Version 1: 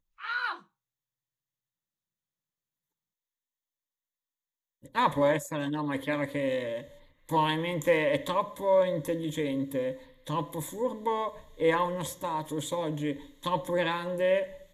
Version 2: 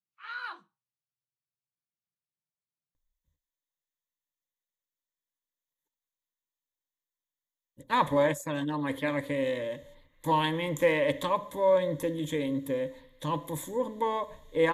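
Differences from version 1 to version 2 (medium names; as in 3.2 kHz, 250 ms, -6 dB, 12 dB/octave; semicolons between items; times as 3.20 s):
speech: entry +2.95 s; background -6.5 dB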